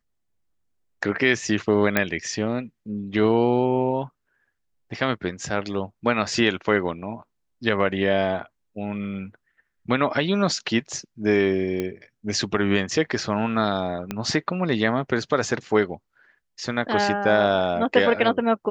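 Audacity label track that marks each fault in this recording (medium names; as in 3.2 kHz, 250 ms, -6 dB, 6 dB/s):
1.970000	1.970000	pop -5 dBFS
11.800000	11.800000	pop -14 dBFS
14.110000	14.110000	pop -13 dBFS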